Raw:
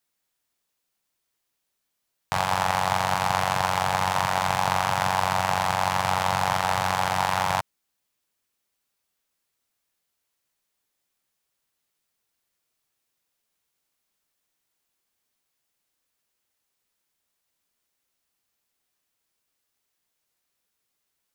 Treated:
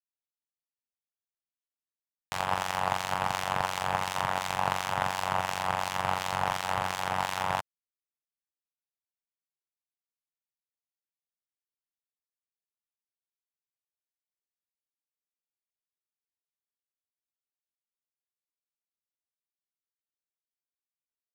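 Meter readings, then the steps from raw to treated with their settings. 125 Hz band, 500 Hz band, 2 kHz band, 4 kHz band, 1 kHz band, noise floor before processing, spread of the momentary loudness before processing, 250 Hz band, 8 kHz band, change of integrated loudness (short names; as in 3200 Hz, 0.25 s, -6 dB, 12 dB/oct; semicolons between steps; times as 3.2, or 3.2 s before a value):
-8.0 dB, -5.5 dB, -5.5 dB, -5.5 dB, -6.5 dB, -79 dBFS, 2 LU, -6.5 dB, -6.5 dB, -6.0 dB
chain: harmonic tremolo 2.8 Hz, depth 50%, crossover 1900 Hz; power-law curve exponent 1.4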